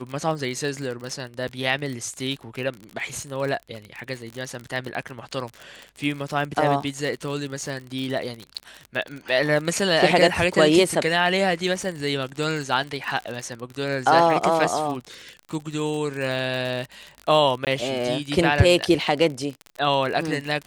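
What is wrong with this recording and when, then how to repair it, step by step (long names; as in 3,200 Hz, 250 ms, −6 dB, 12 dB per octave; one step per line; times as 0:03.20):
surface crackle 42 per second −28 dBFS
0:17.65–0:17.67: drop-out 18 ms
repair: click removal
repair the gap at 0:17.65, 18 ms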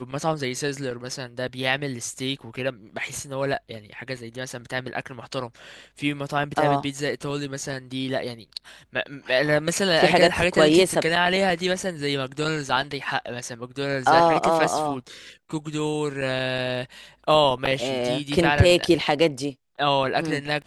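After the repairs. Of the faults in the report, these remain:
none of them is left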